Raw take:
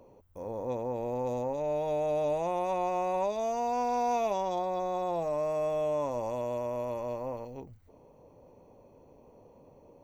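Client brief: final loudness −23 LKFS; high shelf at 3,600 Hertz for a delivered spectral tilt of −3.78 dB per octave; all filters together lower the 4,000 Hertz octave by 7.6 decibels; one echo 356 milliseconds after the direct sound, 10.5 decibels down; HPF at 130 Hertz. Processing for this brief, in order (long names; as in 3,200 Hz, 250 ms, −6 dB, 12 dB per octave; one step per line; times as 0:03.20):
high-pass filter 130 Hz
high-shelf EQ 3,600 Hz −5 dB
parametric band 4,000 Hz −6.5 dB
single-tap delay 356 ms −10.5 dB
level +8.5 dB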